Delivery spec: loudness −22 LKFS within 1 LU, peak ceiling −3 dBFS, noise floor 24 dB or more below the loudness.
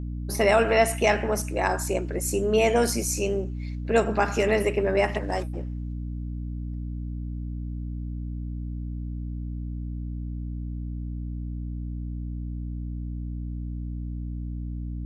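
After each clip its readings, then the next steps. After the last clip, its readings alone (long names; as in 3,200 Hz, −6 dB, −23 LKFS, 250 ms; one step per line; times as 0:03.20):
mains hum 60 Hz; hum harmonics up to 300 Hz; level of the hum −29 dBFS; integrated loudness −28.0 LKFS; sample peak −7.5 dBFS; target loudness −22.0 LKFS
→ mains-hum notches 60/120/180/240/300 Hz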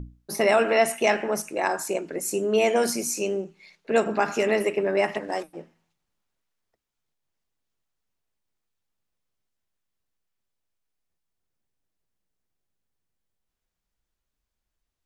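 mains hum none found; integrated loudness −24.5 LKFS; sample peak −8.0 dBFS; target loudness −22.0 LKFS
→ level +2.5 dB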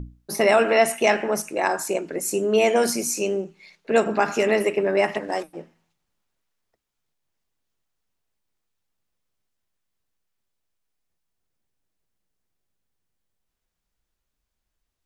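integrated loudness −22.0 LKFS; sample peak −5.5 dBFS; background noise floor −80 dBFS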